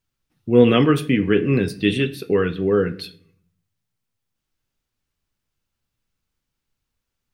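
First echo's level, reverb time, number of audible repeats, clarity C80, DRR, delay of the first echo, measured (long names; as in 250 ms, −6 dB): no echo audible, 0.60 s, no echo audible, 20.5 dB, 11.5 dB, no echo audible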